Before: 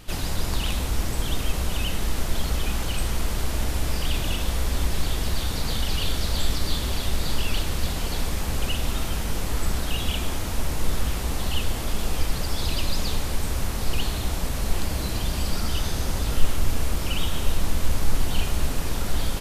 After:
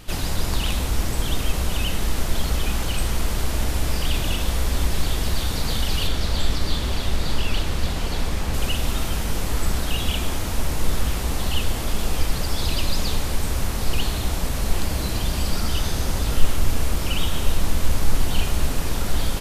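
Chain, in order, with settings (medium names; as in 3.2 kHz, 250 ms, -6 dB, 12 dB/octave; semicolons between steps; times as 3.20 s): 6.07–8.54 s: treble shelf 7.5 kHz -8.5 dB; trim +2.5 dB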